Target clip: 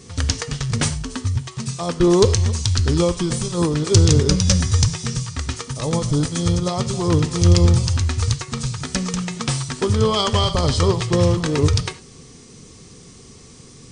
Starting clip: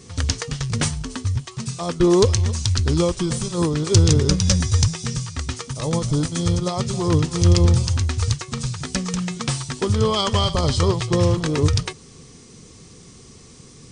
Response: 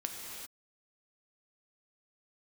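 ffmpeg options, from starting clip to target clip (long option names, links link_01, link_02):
-filter_complex "[0:a]asplit=2[link_01][link_02];[1:a]atrim=start_sample=2205,atrim=end_sample=6174,asetrate=57330,aresample=44100[link_03];[link_02][link_03]afir=irnorm=-1:irlink=0,volume=0dB[link_04];[link_01][link_04]amix=inputs=2:normalize=0,volume=-3dB"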